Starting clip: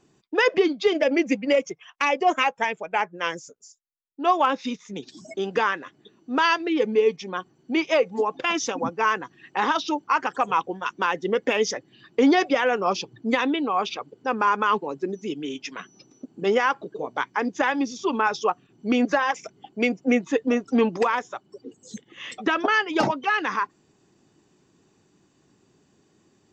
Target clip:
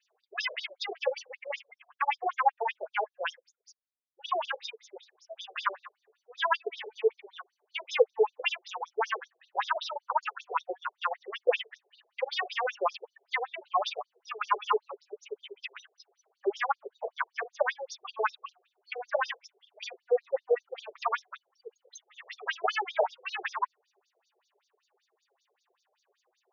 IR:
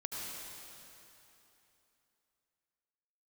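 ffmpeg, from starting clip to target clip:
-af "flanger=delay=5.6:depth=1.8:regen=-8:speed=1.4:shape=triangular,afftfilt=real='re*between(b*sr/1024,510*pow(5000/510,0.5+0.5*sin(2*PI*5.2*pts/sr))/1.41,510*pow(5000/510,0.5+0.5*sin(2*PI*5.2*pts/sr))*1.41)':imag='im*between(b*sr/1024,510*pow(5000/510,0.5+0.5*sin(2*PI*5.2*pts/sr))/1.41,510*pow(5000/510,0.5+0.5*sin(2*PI*5.2*pts/sr))*1.41)':win_size=1024:overlap=0.75,volume=3dB"

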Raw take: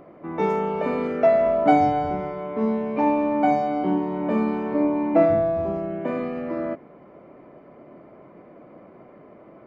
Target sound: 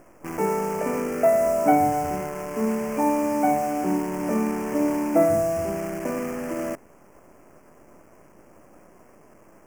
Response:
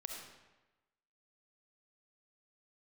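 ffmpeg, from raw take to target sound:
-af "acrusher=bits=6:dc=4:mix=0:aa=0.000001,asuperstop=centerf=3800:order=4:qfactor=1.2,volume=-1.5dB"

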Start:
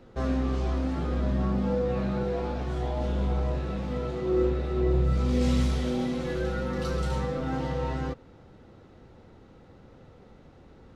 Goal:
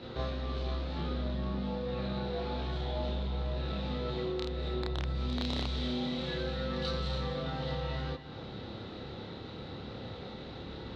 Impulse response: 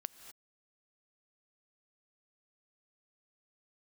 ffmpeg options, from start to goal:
-filter_complex "[0:a]aeval=exprs='(mod(5.62*val(0)+1,2)-1)/5.62':channel_layout=same,acompressor=threshold=-42dB:ratio=5,asoftclip=type=tanh:threshold=-34.5dB,lowpass=frequency=3900:width_type=q:width=5.4,aeval=exprs='0.0473*(cos(1*acos(clip(val(0)/0.0473,-1,1)))-cos(1*PI/2))+0.000596*(cos(8*acos(clip(val(0)/0.0473,-1,1)))-cos(8*PI/2))':channel_layout=same,highpass=61,asplit=2[link_01][link_02];[1:a]atrim=start_sample=2205,adelay=29[link_03];[link_02][link_03]afir=irnorm=-1:irlink=0,volume=5dB[link_04];[link_01][link_04]amix=inputs=2:normalize=0,volume=5.5dB"

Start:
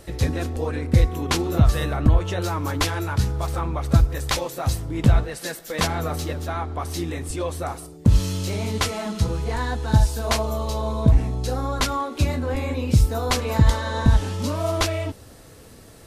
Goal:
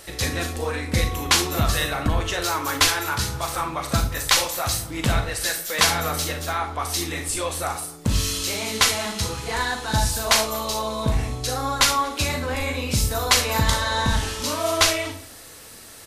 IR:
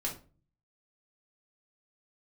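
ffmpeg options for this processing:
-filter_complex "[0:a]tiltshelf=frequency=650:gain=-8,asplit=2[link_01][link_02];[link_02]adelay=233.2,volume=-23dB,highshelf=frequency=4000:gain=-5.25[link_03];[link_01][link_03]amix=inputs=2:normalize=0,asplit=2[link_04][link_05];[1:a]atrim=start_sample=2205,highshelf=frequency=6800:gain=8.5,adelay=37[link_06];[link_05][link_06]afir=irnorm=-1:irlink=0,volume=-9.5dB[link_07];[link_04][link_07]amix=inputs=2:normalize=0"

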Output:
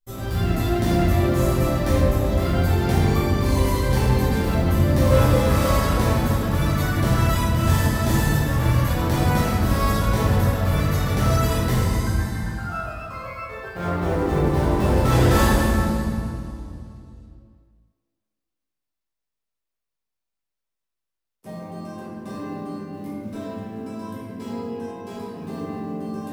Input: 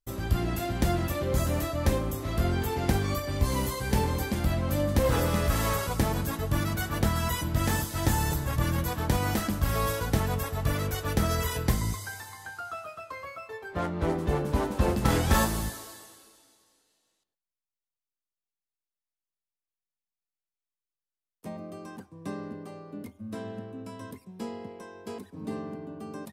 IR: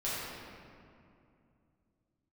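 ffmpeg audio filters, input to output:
-filter_complex "[0:a]acrusher=bits=7:mode=log:mix=0:aa=0.000001[link_01];[1:a]atrim=start_sample=2205[link_02];[link_01][link_02]afir=irnorm=-1:irlink=0"

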